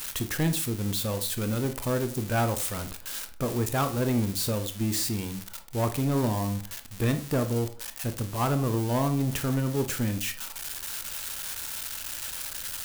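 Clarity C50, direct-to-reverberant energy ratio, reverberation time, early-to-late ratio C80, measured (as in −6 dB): 12.5 dB, 8.5 dB, 0.45 s, 17.5 dB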